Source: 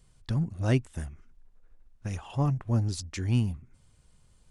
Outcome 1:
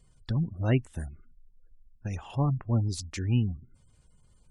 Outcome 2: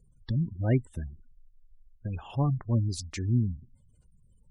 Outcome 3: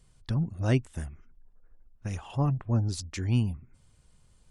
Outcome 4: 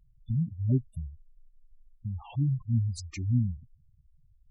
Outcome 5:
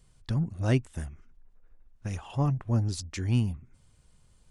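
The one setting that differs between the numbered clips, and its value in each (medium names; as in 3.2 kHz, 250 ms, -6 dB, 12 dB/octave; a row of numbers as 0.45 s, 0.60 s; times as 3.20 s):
spectral gate, under each frame's peak: -35 dB, -25 dB, -50 dB, -10 dB, -60 dB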